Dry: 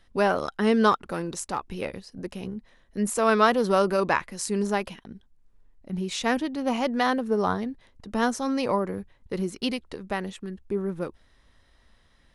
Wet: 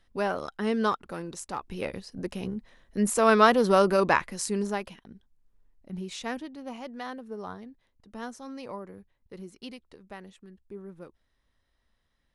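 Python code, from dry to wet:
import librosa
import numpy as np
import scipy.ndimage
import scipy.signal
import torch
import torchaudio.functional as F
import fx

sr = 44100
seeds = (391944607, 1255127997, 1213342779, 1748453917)

y = fx.gain(x, sr, db=fx.line((1.43, -6.0), (2.02, 1.0), (4.31, 1.0), (4.83, -6.0), (5.98, -6.0), (6.79, -14.0)))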